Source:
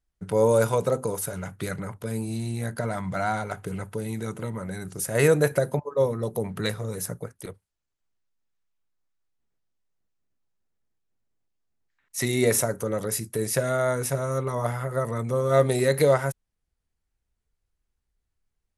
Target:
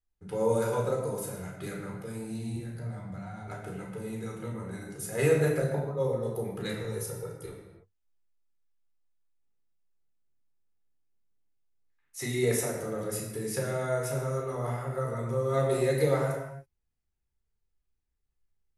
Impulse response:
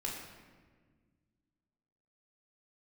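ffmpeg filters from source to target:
-filter_complex "[0:a]asettb=1/sr,asplit=3[s0][s1][s2];[s0]atrim=end=2.564[s3];[s1]atrim=start=2.56:end=3.48,asetpts=PTS-STARTPTS,afade=t=in:d=0.004:c=qsin,afade=t=out:st=0.916:d=0.004:c=qsin,acrossover=split=180[s4][s5];[s5]acompressor=threshold=0.00447:ratio=2[s6];[s4][s6]amix=inputs=2:normalize=0[s7];[s2]atrim=start=3.476[s8];[s3][s7]acrossfade=d=0.004:c1=hsin:c2=qsin[s9];[s9][s8]acrossfade=d=0.004:c1=qsin:c2=hsin,asettb=1/sr,asplit=3[s10][s11][s12];[s10]atrim=end=6.814[s13];[s11]atrim=start=6.81:end=7.46,asetpts=PTS-STARTPTS,afade=t=in:d=0.004:c=qsin,afade=t=out:st=0.646:d=0.004:c=qsin,aecho=1:1:2.2:0.75,atrim=end_sample=28665[s14];[s12]atrim=start=7.456[s15];[s13][s14]acrossfade=d=0.004:c1=hsin:c2=qsin[s16];[s16][s15]acrossfade=d=0.004:c1=qsin:c2=hsin[s17];[1:a]atrim=start_sample=2205,afade=t=out:st=0.39:d=0.01,atrim=end_sample=17640[s18];[s17][s18]afir=irnorm=-1:irlink=0,volume=0.422"

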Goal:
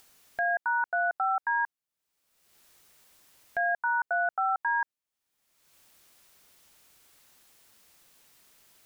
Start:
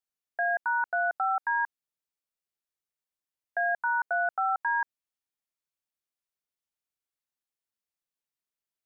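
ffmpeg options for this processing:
-af "acompressor=mode=upward:threshold=0.0158:ratio=2.5"

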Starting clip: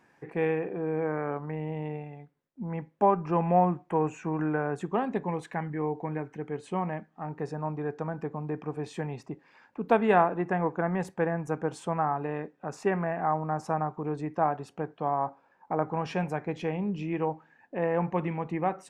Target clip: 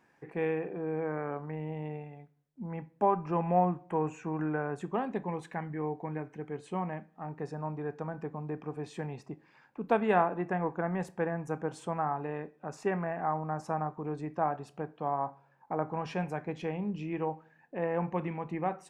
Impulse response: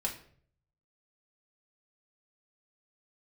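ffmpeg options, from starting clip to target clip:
-filter_complex "[0:a]asplit=2[s0][s1];[1:a]atrim=start_sample=2205,adelay=28[s2];[s1][s2]afir=irnorm=-1:irlink=0,volume=0.1[s3];[s0][s3]amix=inputs=2:normalize=0,volume=0.631"

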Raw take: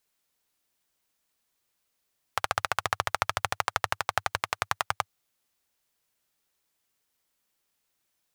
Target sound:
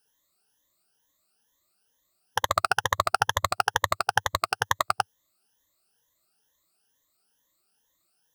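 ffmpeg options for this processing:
-af "afftfilt=real='re*pow(10,18/40*sin(2*PI*(1.1*log(max(b,1)*sr/1024/100)/log(2)-(2.2)*(pts-256)/sr)))':imag='im*pow(10,18/40*sin(2*PI*(1.1*log(max(b,1)*sr/1024/100)/log(2)-(2.2)*(pts-256)/sr)))':win_size=1024:overlap=0.75,equalizer=f=2300:w=5.7:g=-12,volume=1.12"

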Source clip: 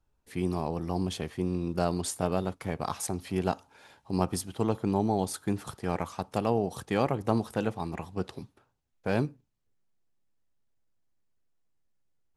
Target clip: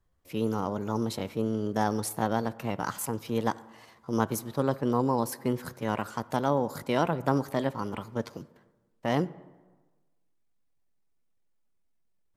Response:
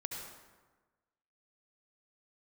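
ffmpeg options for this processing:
-filter_complex "[0:a]asetrate=53981,aresample=44100,atempo=0.816958,asplit=2[s0][s1];[1:a]atrim=start_sample=2205,lowpass=3100[s2];[s1][s2]afir=irnorm=-1:irlink=0,volume=0.15[s3];[s0][s3]amix=inputs=2:normalize=0"

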